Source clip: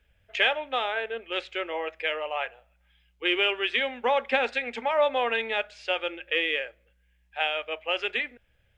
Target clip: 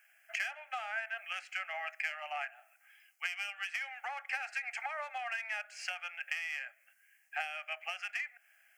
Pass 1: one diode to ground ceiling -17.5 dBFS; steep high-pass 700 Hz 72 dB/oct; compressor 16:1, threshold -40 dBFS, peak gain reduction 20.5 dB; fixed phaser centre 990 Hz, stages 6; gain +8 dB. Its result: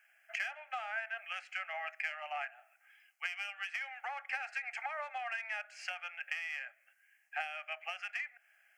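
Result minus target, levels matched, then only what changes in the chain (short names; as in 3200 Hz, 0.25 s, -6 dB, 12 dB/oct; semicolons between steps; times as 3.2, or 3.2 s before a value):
8000 Hz band -4.5 dB
add after compressor: high shelf 4600 Hz +8.5 dB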